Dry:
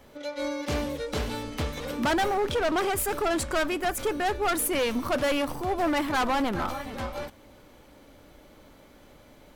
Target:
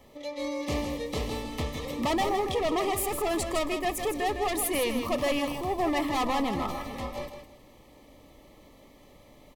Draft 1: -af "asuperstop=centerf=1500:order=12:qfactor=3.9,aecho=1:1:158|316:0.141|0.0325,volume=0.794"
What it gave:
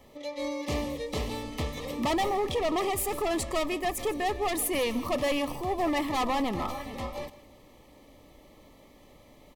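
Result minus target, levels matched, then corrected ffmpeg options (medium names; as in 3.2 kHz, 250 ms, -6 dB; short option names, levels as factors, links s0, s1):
echo-to-direct -9.5 dB
-af "asuperstop=centerf=1500:order=12:qfactor=3.9,aecho=1:1:158|316|474:0.422|0.097|0.0223,volume=0.794"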